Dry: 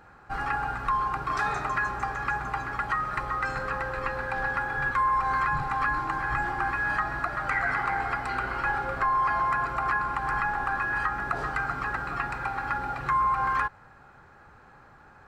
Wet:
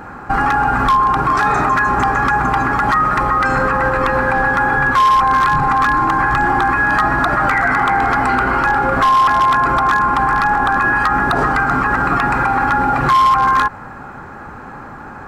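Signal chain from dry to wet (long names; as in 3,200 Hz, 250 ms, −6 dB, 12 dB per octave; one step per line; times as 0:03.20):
octave-band graphic EQ 250/1,000/4,000 Hz +9/+4/−5 dB
wave folding −16.5 dBFS
boost into a limiter +23.5 dB
level −6 dB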